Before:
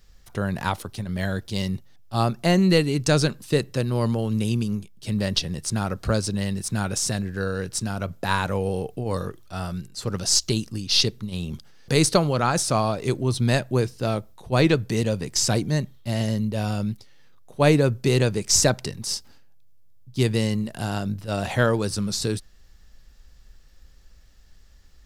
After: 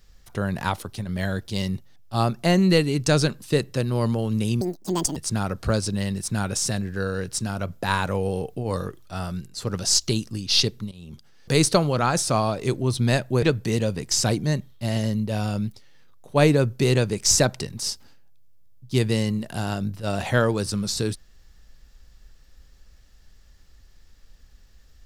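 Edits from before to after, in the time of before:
4.61–5.57 s: speed 173%
11.32–11.94 s: fade in, from -20 dB
13.83–14.67 s: delete

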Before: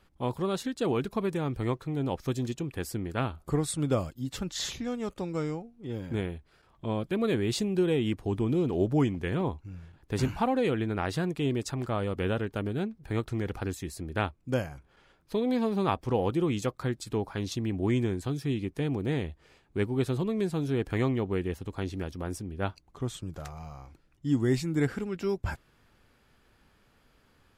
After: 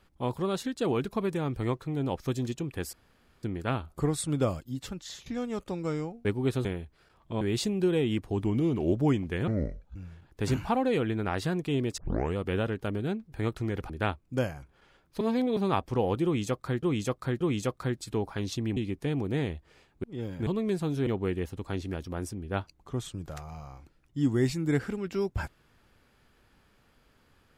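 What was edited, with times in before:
2.93 s: insert room tone 0.50 s
4.16–4.76 s: fade out linear, to -17.5 dB
5.75–6.18 s: swap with 19.78–20.18 s
6.94–7.36 s: delete
8.39–8.84 s: speed 93%
9.39–9.67 s: speed 58%
11.69 s: tape start 0.38 s
13.61–14.05 s: delete
15.36–15.72 s: reverse
16.40–16.98 s: loop, 3 plays
17.76–18.51 s: delete
20.78–21.15 s: delete

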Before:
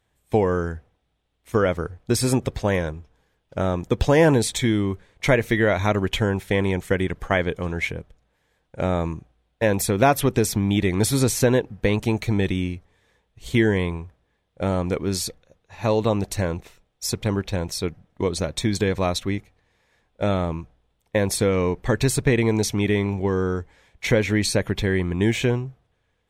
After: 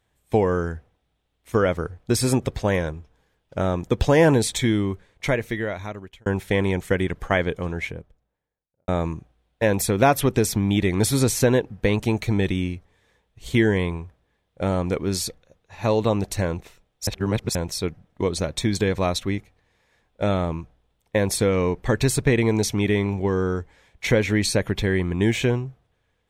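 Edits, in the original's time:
4.74–6.26 s: fade out
7.41–8.88 s: studio fade out
17.07–17.55 s: reverse

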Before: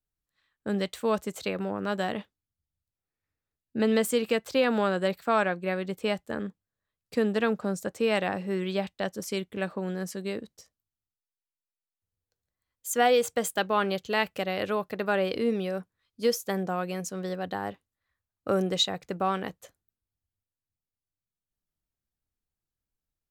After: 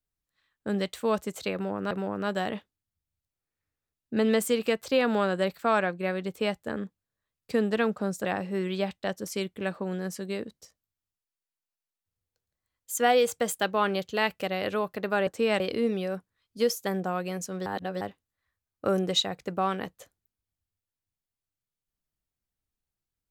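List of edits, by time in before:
1.54–1.91 s: loop, 2 plays
7.88–8.21 s: move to 15.23 s
17.29–17.64 s: reverse

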